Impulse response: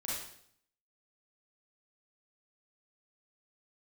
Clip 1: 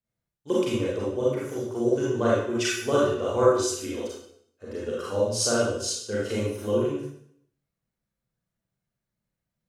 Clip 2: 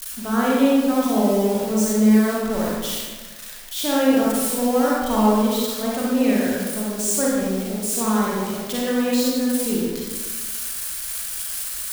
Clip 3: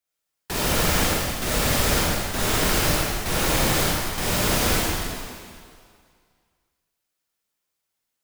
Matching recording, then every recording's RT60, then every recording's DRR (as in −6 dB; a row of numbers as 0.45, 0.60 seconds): 1; 0.65, 1.4, 2.1 seconds; −7.0, −5.5, −6.0 decibels